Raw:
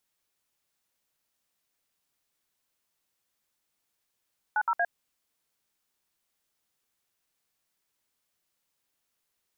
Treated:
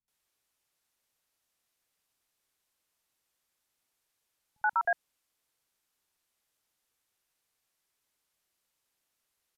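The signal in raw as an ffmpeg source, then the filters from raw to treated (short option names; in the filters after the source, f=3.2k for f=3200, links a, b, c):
-f lavfi -i "aevalsrc='0.0531*clip(min(mod(t,0.117),0.055-mod(t,0.117))/0.002,0,1)*(eq(floor(t/0.117),0)*(sin(2*PI*852*mod(t,0.117))+sin(2*PI*1477*mod(t,0.117)))+eq(floor(t/0.117),1)*(sin(2*PI*941*mod(t,0.117))+sin(2*PI*1336*mod(t,0.117)))+eq(floor(t/0.117),2)*(sin(2*PI*697*mod(t,0.117))+sin(2*PI*1633*mod(t,0.117))))':d=0.351:s=44100"
-filter_complex "[0:a]acrossover=split=200[a][b];[b]adelay=80[c];[a][c]amix=inputs=2:normalize=0,aresample=32000,aresample=44100"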